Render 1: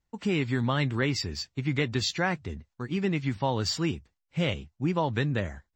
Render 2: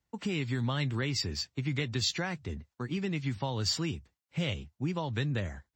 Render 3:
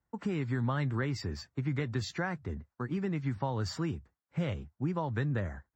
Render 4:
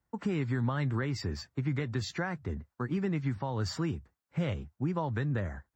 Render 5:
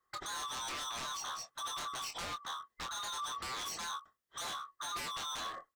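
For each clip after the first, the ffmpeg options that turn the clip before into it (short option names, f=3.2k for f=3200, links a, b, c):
-filter_complex "[0:a]highpass=56,acrossover=split=130|3000[a][b][c];[b]acompressor=threshold=-34dB:ratio=3[d];[a][d][c]amix=inputs=3:normalize=0"
-af "highshelf=f=2.1k:t=q:w=1.5:g=-10"
-af "alimiter=limit=-23.5dB:level=0:latency=1:release=218,volume=2dB"
-filter_complex "[0:a]afftfilt=real='real(if(lt(b,960),b+48*(1-2*mod(floor(b/48),2)),b),0)':imag='imag(if(lt(b,960),b+48*(1-2*mod(floor(b/48),2)),b),0)':win_size=2048:overlap=0.75,aeval=exprs='0.0168*(abs(mod(val(0)/0.0168+3,4)-2)-1)':c=same,asplit=2[a][b];[b]adelay=24,volume=-7dB[c];[a][c]amix=inputs=2:normalize=0,volume=-1dB"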